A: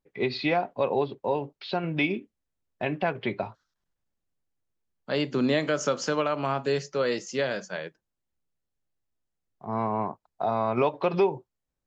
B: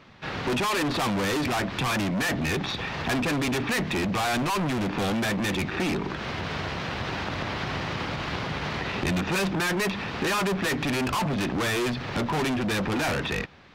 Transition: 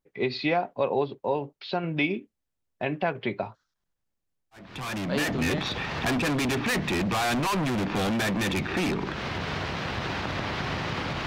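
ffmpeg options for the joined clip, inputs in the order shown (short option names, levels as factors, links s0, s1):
-filter_complex "[0:a]apad=whole_dur=11.26,atrim=end=11.26,atrim=end=5.79,asetpts=PTS-STARTPTS[s0];[1:a]atrim=start=1.54:end=8.29,asetpts=PTS-STARTPTS[s1];[s0][s1]acrossfade=d=1.28:c1=qsin:c2=qsin"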